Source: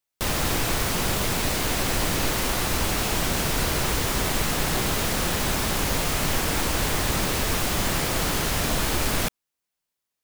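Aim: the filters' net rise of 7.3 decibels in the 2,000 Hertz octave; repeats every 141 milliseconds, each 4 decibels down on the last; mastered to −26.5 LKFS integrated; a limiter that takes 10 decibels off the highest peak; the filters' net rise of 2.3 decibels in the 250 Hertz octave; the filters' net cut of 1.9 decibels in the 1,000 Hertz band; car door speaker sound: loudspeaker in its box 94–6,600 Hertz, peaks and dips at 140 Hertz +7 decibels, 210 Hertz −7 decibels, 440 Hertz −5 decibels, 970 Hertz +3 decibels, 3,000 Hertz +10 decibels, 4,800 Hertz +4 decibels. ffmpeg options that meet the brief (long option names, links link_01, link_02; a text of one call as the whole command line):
ffmpeg -i in.wav -af "equalizer=frequency=250:width_type=o:gain=6,equalizer=frequency=1000:width_type=o:gain=-7,equalizer=frequency=2000:width_type=o:gain=8.5,alimiter=limit=-19dB:level=0:latency=1,highpass=94,equalizer=frequency=140:width_type=q:width=4:gain=7,equalizer=frequency=210:width_type=q:width=4:gain=-7,equalizer=frequency=440:width_type=q:width=4:gain=-5,equalizer=frequency=970:width_type=q:width=4:gain=3,equalizer=frequency=3000:width_type=q:width=4:gain=10,equalizer=frequency=4800:width_type=q:width=4:gain=4,lowpass=frequency=6600:width=0.5412,lowpass=frequency=6600:width=1.3066,aecho=1:1:141|282|423|564|705|846|987|1128|1269:0.631|0.398|0.25|0.158|0.0994|0.0626|0.0394|0.0249|0.0157,volume=-2.5dB" out.wav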